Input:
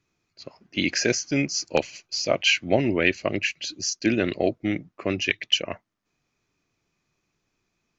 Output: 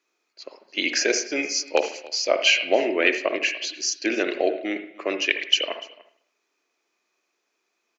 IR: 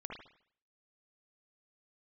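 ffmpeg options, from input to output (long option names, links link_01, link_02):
-filter_complex "[0:a]highpass=frequency=350:width=0.5412,highpass=frequency=350:width=1.3066,aecho=1:1:293:0.0891,asplit=2[link_01][link_02];[1:a]atrim=start_sample=2205[link_03];[link_02][link_03]afir=irnorm=-1:irlink=0,volume=-0.5dB[link_04];[link_01][link_04]amix=inputs=2:normalize=0,volume=-1.5dB"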